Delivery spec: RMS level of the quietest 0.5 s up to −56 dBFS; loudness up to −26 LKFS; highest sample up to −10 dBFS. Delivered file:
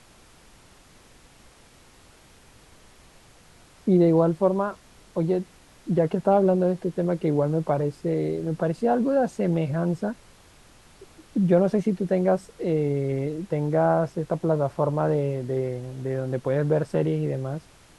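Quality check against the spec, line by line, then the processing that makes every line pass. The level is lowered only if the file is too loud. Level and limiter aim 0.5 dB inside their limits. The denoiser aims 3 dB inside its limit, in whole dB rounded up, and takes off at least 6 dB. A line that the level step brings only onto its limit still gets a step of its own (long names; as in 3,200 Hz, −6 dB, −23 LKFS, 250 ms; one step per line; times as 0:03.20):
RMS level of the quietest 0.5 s −53 dBFS: out of spec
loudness −24.5 LKFS: out of spec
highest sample −7.5 dBFS: out of spec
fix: broadband denoise 6 dB, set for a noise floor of −53 dBFS
level −2 dB
brickwall limiter −10.5 dBFS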